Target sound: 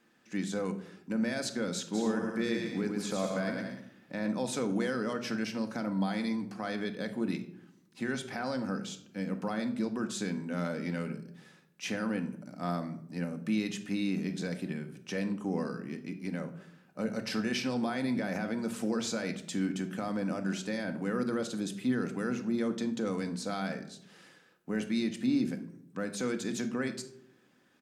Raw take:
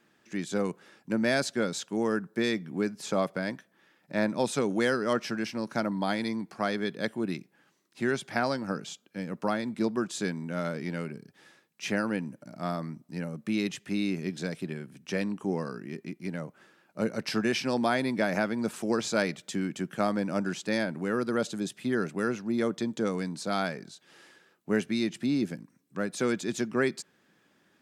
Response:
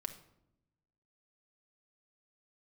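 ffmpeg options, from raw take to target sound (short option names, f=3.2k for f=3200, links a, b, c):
-filter_complex "[0:a]alimiter=limit=-22dB:level=0:latency=1:release=47,asplit=3[a][b][c];[a]afade=t=out:st=1.93:d=0.02[d];[b]aecho=1:1:110|187|240.9|278.6|305:0.631|0.398|0.251|0.158|0.1,afade=t=in:st=1.93:d=0.02,afade=t=out:st=4.27:d=0.02[e];[c]afade=t=in:st=4.27:d=0.02[f];[d][e][f]amix=inputs=3:normalize=0[g];[1:a]atrim=start_sample=2205,asetrate=52920,aresample=44100[h];[g][h]afir=irnorm=-1:irlink=0,volume=2dB"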